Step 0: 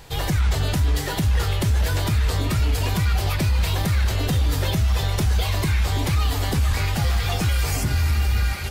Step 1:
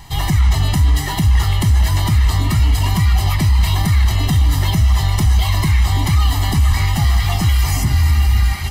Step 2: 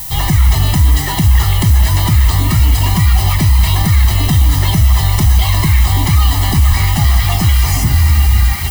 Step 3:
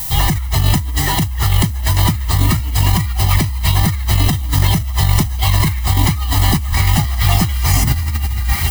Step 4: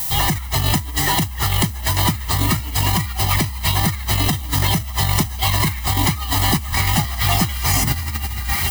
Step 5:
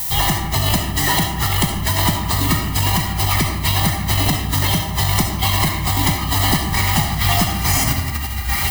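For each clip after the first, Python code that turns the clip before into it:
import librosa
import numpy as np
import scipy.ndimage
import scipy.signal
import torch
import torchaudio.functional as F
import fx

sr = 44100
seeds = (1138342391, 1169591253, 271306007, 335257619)

y1 = x + 0.86 * np.pad(x, (int(1.0 * sr / 1000.0), 0))[:len(x)]
y1 = y1 * 10.0 ** (2.0 / 20.0)
y2 = fx.dmg_noise_colour(y1, sr, seeds[0], colour='violet', level_db=-29.0)
y2 = y2 * 10.0 ** (3.5 / 20.0)
y3 = fx.over_compress(y2, sr, threshold_db=-12.0, ratio=-0.5)
y3 = y3 * 10.0 ** (-1.5 / 20.0)
y4 = fx.low_shelf(y3, sr, hz=120.0, db=-10.5)
y5 = fx.rev_freeverb(y4, sr, rt60_s=0.97, hf_ratio=0.55, predelay_ms=25, drr_db=3.0)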